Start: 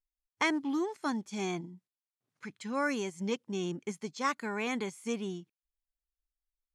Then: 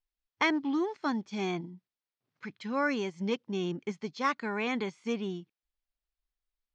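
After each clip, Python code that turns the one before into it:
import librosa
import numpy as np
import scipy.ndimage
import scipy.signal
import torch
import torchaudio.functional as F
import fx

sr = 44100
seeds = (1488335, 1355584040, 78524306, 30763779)

y = scipy.signal.sosfilt(scipy.signal.butter(4, 5100.0, 'lowpass', fs=sr, output='sos'), x)
y = F.gain(torch.from_numpy(y), 2.0).numpy()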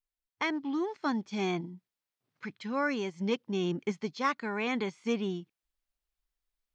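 y = fx.rider(x, sr, range_db=10, speed_s=0.5)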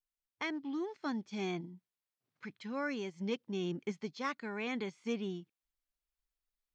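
y = fx.dynamic_eq(x, sr, hz=1000.0, q=1.6, threshold_db=-47.0, ratio=4.0, max_db=-4)
y = F.gain(torch.from_numpy(y), -5.5).numpy()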